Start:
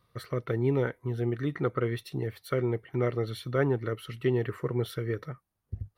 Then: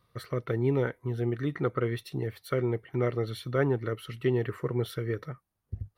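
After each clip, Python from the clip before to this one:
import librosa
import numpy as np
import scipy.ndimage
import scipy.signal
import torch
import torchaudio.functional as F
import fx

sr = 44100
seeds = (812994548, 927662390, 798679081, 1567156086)

y = x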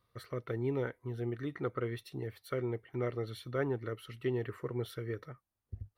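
y = fx.peak_eq(x, sr, hz=160.0, db=-6.0, octaves=0.43)
y = y * 10.0 ** (-6.5 / 20.0)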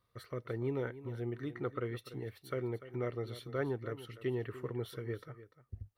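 y = x + 10.0 ** (-14.5 / 20.0) * np.pad(x, (int(294 * sr / 1000.0), 0))[:len(x)]
y = y * 10.0 ** (-2.0 / 20.0)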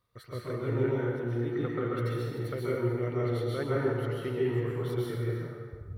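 y = fx.rev_plate(x, sr, seeds[0], rt60_s=1.5, hf_ratio=0.65, predelay_ms=115, drr_db=-6.0)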